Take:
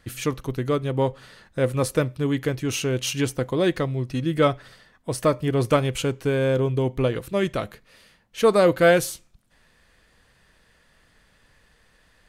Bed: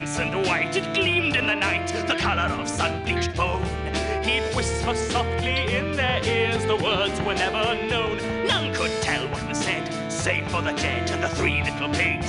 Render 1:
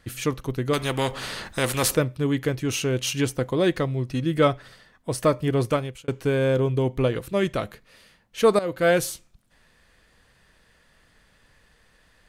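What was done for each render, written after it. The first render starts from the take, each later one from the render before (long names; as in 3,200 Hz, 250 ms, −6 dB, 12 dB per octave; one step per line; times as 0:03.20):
0:00.73–0:01.95: every bin compressed towards the loudest bin 2 to 1
0:05.55–0:06.08: fade out
0:08.59–0:09.06: fade in, from −16.5 dB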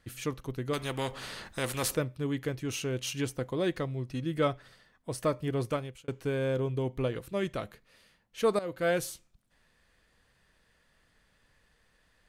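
level −8.5 dB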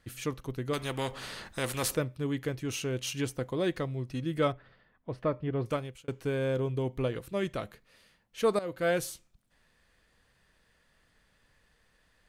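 0:04.52–0:05.66: high-frequency loss of the air 370 metres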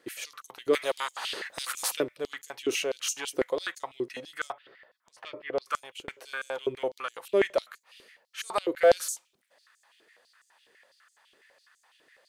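in parallel at −6 dB: soft clipping −32 dBFS, distortion −8 dB
on the sum: high-pass on a step sequencer 12 Hz 370–6,900 Hz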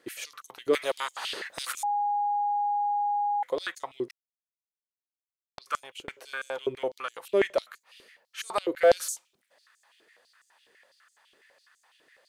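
0:01.83–0:03.43: beep over 822 Hz −24 dBFS
0:04.11–0:05.58: silence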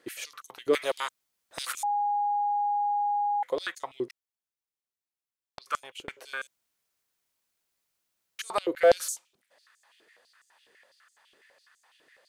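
0:01.09–0:01.51: fill with room tone
0:06.47–0:08.39: fill with room tone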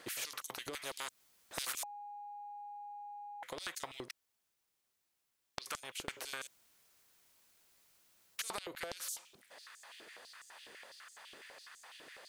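downward compressor 6 to 1, threshold −34 dBFS, peak gain reduction 18 dB
every bin compressed towards the loudest bin 2 to 1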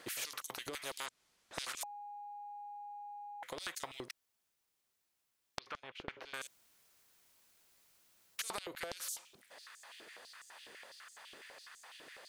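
0:01.06–0:01.81: high-frequency loss of the air 50 metres
0:05.59–0:06.34: high-frequency loss of the air 290 metres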